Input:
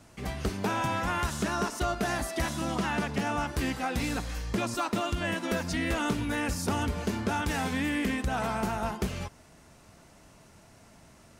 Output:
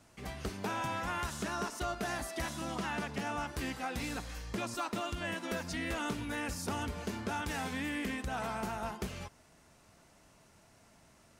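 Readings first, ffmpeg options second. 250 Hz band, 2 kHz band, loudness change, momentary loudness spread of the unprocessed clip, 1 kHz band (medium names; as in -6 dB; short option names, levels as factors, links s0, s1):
-8.0 dB, -5.5 dB, -7.0 dB, 3 LU, -6.0 dB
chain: -af "lowshelf=f=420:g=-3.5,volume=0.531"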